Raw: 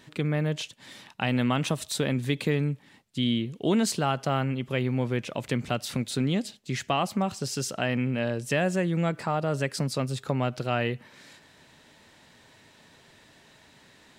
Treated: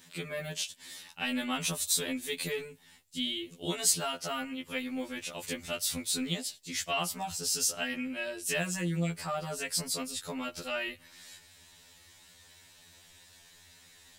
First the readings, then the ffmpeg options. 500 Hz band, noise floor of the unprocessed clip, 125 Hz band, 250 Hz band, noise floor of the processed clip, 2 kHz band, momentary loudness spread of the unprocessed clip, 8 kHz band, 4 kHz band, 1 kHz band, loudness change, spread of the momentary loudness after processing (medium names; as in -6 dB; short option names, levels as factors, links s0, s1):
-9.0 dB, -57 dBFS, -13.0 dB, -9.5 dB, -58 dBFS, -3.0 dB, 6 LU, +6.0 dB, +0.5 dB, -8.0 dB, -4.5 dB, 10 LU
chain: -af "crystalizer=i=5:c=0,asubboost=boost=4:cutoff=97,afftfilt=real='re*2*eq(mod(b,4),0)':imag='im*2*eq(mod(b,4),0)':win_size=2048:overlap=0.75,volume=0.473"